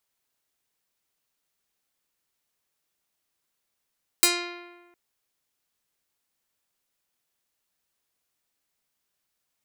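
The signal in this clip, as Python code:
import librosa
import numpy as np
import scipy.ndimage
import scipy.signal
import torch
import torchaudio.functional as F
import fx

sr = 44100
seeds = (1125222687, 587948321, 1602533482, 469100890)

y = fx.pluck(sr, length_s=0.71, note=65, decay_s=1.32, pick=0.39, brightness='medium')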